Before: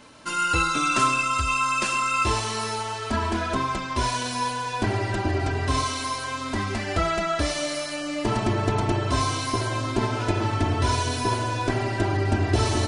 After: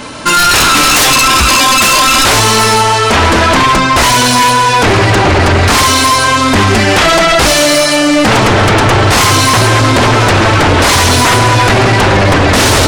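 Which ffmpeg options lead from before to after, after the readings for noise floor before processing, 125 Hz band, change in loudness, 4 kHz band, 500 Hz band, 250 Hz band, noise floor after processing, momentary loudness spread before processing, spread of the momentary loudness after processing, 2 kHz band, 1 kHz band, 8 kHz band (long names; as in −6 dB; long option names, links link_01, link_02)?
−32 dBFS, +14.5 dB, +17.5 dB, +21.5 dB, +17.5 dB, +16.0 dB, −10 dBFS, 6 LU, 2 LU, +19.0 dB, +17.0 dB, +21.5 dB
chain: -af "aeval=exprs='0.376*sin(PI/2*6.31*val(0)/0.376)':channel_layout=same,volume=4dB"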